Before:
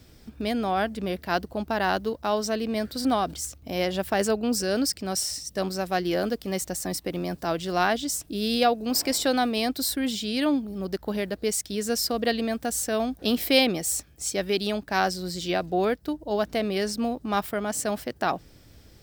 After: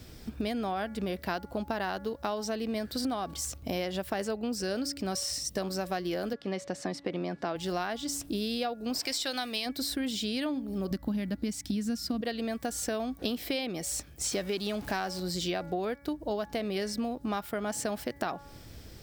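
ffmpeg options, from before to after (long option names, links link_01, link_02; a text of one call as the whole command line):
ffmpeg -i in.wav -filter_complex "[0:a]asettb=1/sr,asplit=3[link_01][link_02][link_03];[link_01]atrim=end=6.334[link_04];[link_02]atrim=start=6.33:end=7.56,asetpts=PTS-STARTPTS,afade=type=in:duration=0.004:curve=qsin,afade=type=out:start_time=1.226:duration=0.004:curve=qsin,highpass=160,lowpass=3700[link_05];[link_03]atrim=start=7.556[link_06];[link_04][link_05]acrossfade=duration=0.004:curve1=hsin:curve2=qsin[link_07];[link_07][link_06]acrossfade=duration=0.004:curve1=qsin:curve2=hsin,asplit=3[link_08][link_09][link_10];[link_08]afade=type=out:start_time=8.99:duration=0.02[link_11];[link_09]tiltshelf=frequency=1400:gain=-7.5,afade=type=in:start_time=8.99:duration=0.02,afade=type=out:start_time=9.65:duration=0.02[link_12];[link_10]afade=type=in:start_time=9.65:duration=0.02[link_13];[link_11][link_12][link_13]amix=inputs=3:normalize=0,asettb=1/sr,asplit=3[link_14][link_15][link_16];[link_14]atrim=end=10.914[link_17];[link_15]atrim=start=10.91:end=12.21,asetpts=PTS-STARTPTS,afade=type=in:duration=0.004:curve=qsin,afade=type=out:start_time=1.296:duration=0.004:curve=qsin,lowshelf=frequency=330:width_type=q:width=3:gain=6.5[link_18];[link_16]atrim=start=12.206[link_19];[link_17][link_18]acrossfade=duration=0.004:curve1=hsin:curve2=qsin[link_20];[link_20][link_19]acrossfade=duration=0.004:curve1=qsin:curve2=hsin,asettb=1/sr,asplit=3[link_21][link_22][link_23];[link_21]atrim=end=14.244[link_24];[link_22]atrim=start=14.24:end=15.2,asetpts=PTS-STARTPTS,afade=type=in:duration=0.004:curve=qsin,afade=type=out:start_time=0.956:duration=0.004:curve=qsin,aeval=exprs='val(0)+0.5*0.0158*sgn(val(0))':channel_layout=same[link_25];[link_23]atrim=start=15.196[link_26];[link_24][link_25]acrossfade=duration=0.004:curve1=hsin:curve2=qsin[link_27];[link_27][link_26]acrossfade=duration=0.004:curve1=qsin:curve2=hsin,acrossover=split=5900[link_28][link_29];[link_29]acompressor=threshold=-35dB:ratio=4:attack=1:release=60[link_30];[link_28][link_30]amix=inputs=2:normalize=0,bandreject=frequency=282.2:width_type=h:width=4,bandreject=frequency=564.4:width_type=h:width=4,bandreject=frequency=846.6:width_type=h:width=4,bandreject=frequency=1128.8:width_type=h:width=4,bandreject=frequency=1411:width_type=h:width=4,bandreject=frequency=1693.2:width_type=h:width=4,bandreject=frequency=1975.4:width_type=h:width=4,bandreject=frequency=2257.6:width_type=h:width=4,acompressor=threshold=-33dB:ratio=12,volume=4dB" out.wav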